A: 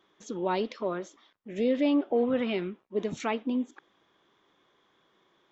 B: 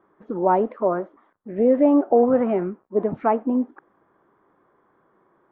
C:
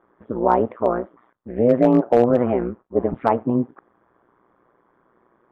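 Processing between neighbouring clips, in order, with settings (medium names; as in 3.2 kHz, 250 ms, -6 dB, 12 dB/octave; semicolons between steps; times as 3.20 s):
dynamic bell 730 Hz, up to +7 dB, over -44 dBFS, Q 1.7; low-pass 1.5 kHz 24 dB/octave; trim +7 dB
AM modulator 120 Hz, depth 75%; resampled via 8 kHz; overload inside the chain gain 10.5 dB; trim +5 dB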